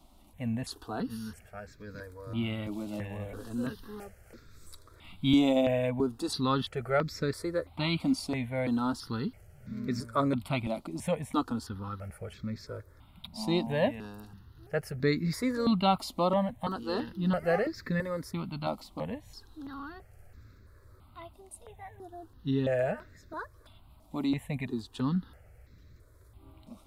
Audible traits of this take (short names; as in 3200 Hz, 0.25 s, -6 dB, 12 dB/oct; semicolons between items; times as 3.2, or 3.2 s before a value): notches that jump at a steady rate 3 Hz 450–3000 Hz